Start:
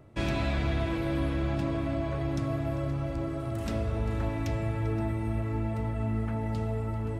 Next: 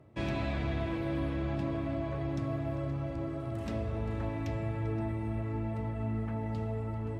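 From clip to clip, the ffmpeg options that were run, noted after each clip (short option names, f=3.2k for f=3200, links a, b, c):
-af "highpass=65,aemphasis=mode=reproduction:type=cd,bandreject=f=1.4k:w=13,volume=-3.5dB"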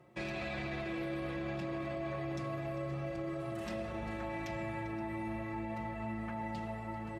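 -af "lowshelf=f=440:g=-9.5,aecho=1:1:5.6:0.99,alimiter=level_in=8dB:limit=-24dB:level=0:latency=1:release=16,volume=-8dB,volume=1dB"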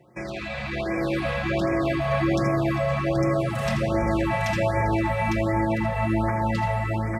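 -af "dynaudnorm=f=540:g=3:m=9dB,aecho=1:1:83|854:0.376|0.631,afftfilt=real='re*(1-between(b*sr/1024,290*pow(3600/290,0.5+0.5*sin(2*PI*1.3*pts/sr))/1.41,290*pow(3600/290,0.5+0.5*sin(2*PI*1.3*pts/sr))*1.41))':imag='im*(1-between(b*sr/1024,290*pow(3600/290,0.5+0.5*sin(2*PI*1.3*pts/sr))/1.41,290*pow(3600/290,0.5+0.5*sin(2*PI*1.3*pts/sr))*1.41))':win_size=1024:overlap=0.75,volume=6dB"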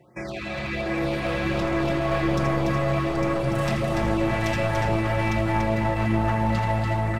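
-af "aeval=exprs='clip(val(0),-1,0.0562)':c=same,aecho=1:1:289:0.631"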